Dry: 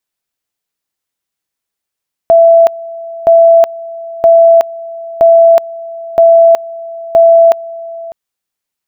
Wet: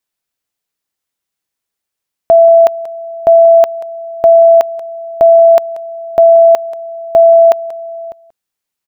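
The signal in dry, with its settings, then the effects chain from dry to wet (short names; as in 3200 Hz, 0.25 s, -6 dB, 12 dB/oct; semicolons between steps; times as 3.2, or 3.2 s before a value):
two-level tone 667 Hz -1.5 dBFS, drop 20 dB, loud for 0.37 s, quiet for 0.60 s, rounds 6
echo 0.184 s -18.5 dB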